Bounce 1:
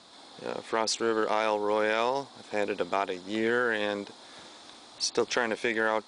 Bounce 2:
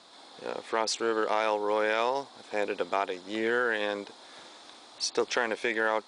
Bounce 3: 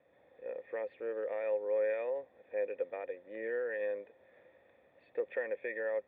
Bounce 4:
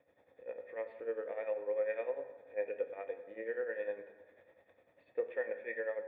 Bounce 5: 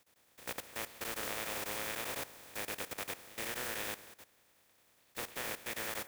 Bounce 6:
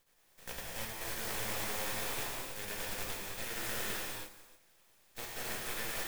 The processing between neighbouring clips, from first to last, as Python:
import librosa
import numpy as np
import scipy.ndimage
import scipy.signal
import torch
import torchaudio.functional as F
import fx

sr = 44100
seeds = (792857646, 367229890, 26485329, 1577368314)

y1 = fx.bass_treble(x, sr, bass_db=-8, treble_db=-2)
y2 = fx.formant_cascade(y1, sr, vowel='e')
y2 = fx.dmg_noise_band(y2, sr, seeds[0], low_hz=64.0, high_hz=690.0, level_db=-76.0)
y3 = y2 * (1.0 - 0.78 / 2.0 + 0.78 / 2.0 * np.cos(2.0 * np.pi * 10.0 * (np.arange(len(y2)) / sr)))
y3 = fx.rev_fdn(y3, sr, rt60_s=1.4, lf_ratio=1.0, hf_ratio=0.6, size_ms=64.0, drr_db=6.5)
y4 = fx.spec_flatten(y3, sr, power=0.2)
y4 = fx.level_steps(y4, sr, step_db=15)
y4 = F.gain(torch.from_numpy(y4), 6.0).numpy()
y5 = np.maximum(y4, 0.0)
y5 = fx.rev_gated(y5, sr, seeds[1], gate_ms=360, shape='flat', drr_db=-5.0)